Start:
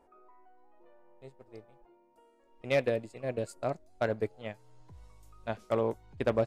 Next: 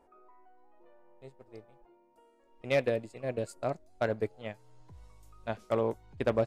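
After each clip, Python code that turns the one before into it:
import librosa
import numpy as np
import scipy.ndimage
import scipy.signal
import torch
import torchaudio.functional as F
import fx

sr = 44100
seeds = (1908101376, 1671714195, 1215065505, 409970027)

y = x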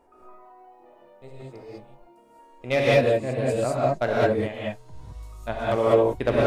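y = fx.rev_gated(x, sr, seeds[0], gate_ms=230, shape='rising', drr_db=-6.0)
y = y * librosa.db_to_amplitude(4.0)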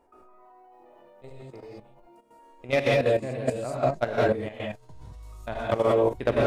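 y = fx.level_steps(x, sr, step_db=11)
y = y * librosa.db_to_amplitude(1.5)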